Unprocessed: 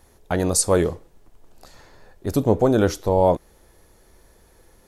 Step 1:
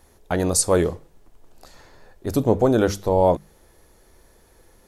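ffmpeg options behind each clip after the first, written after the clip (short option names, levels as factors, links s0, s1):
-af "bandreject=f=50:t=h:w=6,bandreject=f=100:t=h:w=6,bandreject=f=150:t=h:w=6,bandreject=f=200:t=h:w=6"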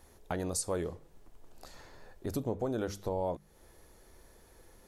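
-af "acompressor=threshold=0.0251:ratio=2.5,volume=0.631"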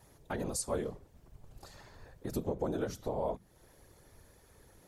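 -af "afftfilt=real='hypot(re,im)*cos(2*PI*random(0))':imag='hypot(re,im)*sin(2*PI*random(1))':win_size=512:overlap=0.75,volume=1.68"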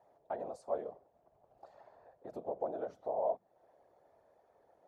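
-af "bandpass=f=680:t=q:w=3.9:csg=0,volume=1.88"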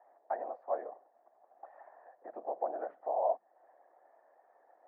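-af "highpass=f=310:w=0.5412,highpass=f=310:w=1.3066,equalizer=f=420:t=q:w=4:g=-6,equalizer=f=760:t=q:w=4:g=7,equalizer=f=1100:t=q:w=4:g=4,equalizer=f=1800:t=q:w=4:g=10,lowpass=f=2000:w=0.5412,lowpass=f=2000:w=1.3066"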